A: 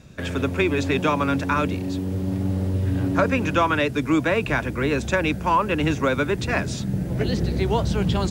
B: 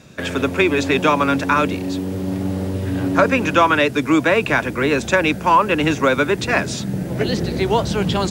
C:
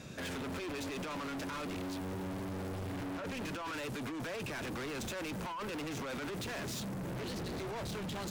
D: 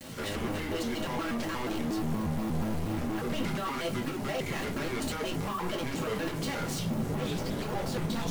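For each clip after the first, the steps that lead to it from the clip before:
high-pass filter 240 Hz 6 dB per octave; level +6.5 dB
compressor whose output falls as the input rises −19 dBFS, ratio −0.5; brickwall limiter −15.5 dBFS, peak gain reduction 9 dB; hard clipping −32.5 dBFS, distortion −5 dB; level −6 dB
bit reduction 8 bits; rectangular room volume 180 cubic metres, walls furnished, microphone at 1.8 metres; pitch modulation by a square or saw wave square 4.2 Hz, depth 250 cents

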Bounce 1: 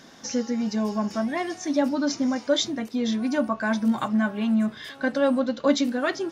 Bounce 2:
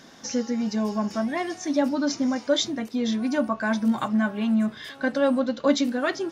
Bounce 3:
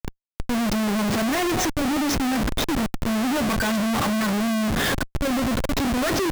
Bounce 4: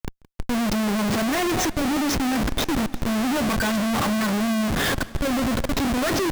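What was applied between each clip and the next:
no processing that can be heard
volume swells 773 ms; comparator with hysteresis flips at −39.5 dBFS; level +6.5 dB
feedback echo with a swinging delay time 173 ms, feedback 80%, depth 127 cents, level −22 dB

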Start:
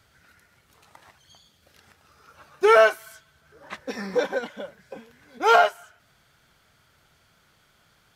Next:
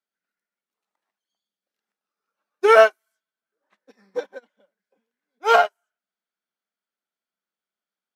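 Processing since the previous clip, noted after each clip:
elliptic high-pass filter 190 Hz
expander for the loud parts 2.5 to 1, over −36 dBFS
level +5 dB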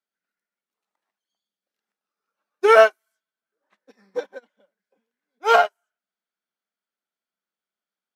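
no processing that can be heard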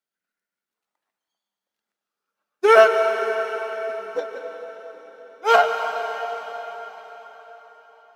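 dense smooth reverb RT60 4.8 s, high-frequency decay 0.9×, pre-delay 115 ms, DRR 5 dB

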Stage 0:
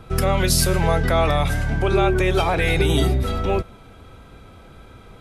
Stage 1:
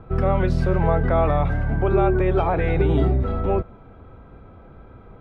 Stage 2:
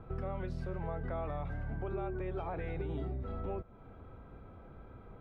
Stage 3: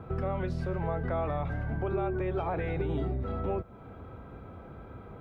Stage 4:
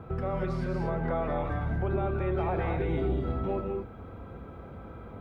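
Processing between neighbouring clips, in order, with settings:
low-pass filter 1,300 Hz 12 dB per octave
downward compressor 3 to 1, threshold −31 dBFS, peak gain reduction 13 dB; level −7.5 dB
high-pass filter 58 Hz; level +7.5 dB
reverb whose tail is shaped and stops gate 260 ms rising, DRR 3 dB

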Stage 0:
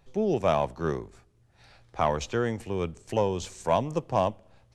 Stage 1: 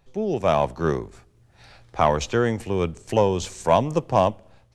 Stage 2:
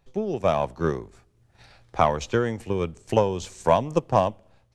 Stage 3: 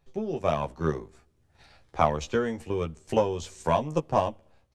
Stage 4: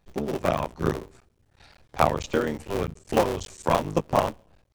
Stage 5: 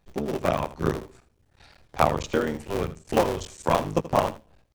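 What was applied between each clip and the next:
automatic gain control gain up to 6.5 dB
transient designer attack +6 dB, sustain −1 dB; level −4.5 dB
double-tracking delay 13 ms −5 dB; level −4.5 dB
sub-harmonics by changed cycles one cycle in 3, muted; level +3.5 dB
single-tap delay 80 ms −15.5 dB

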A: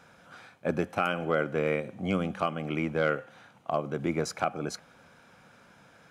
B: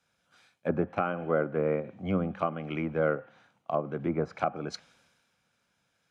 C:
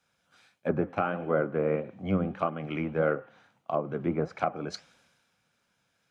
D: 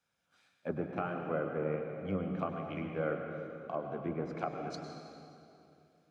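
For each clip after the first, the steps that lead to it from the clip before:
treble cut that deepens with the level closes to 1,200 Hz, closed at −24.5 dBFS; multiband upward and downward expander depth 70%
flanger 1.6 Hz, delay 2.2 ms, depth 10 ms, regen +74%; level +5 dB
convolution reverb RT60 2.7 s, pre-delay 94 ms, DRR 3.5 dB; level −8.5 dB

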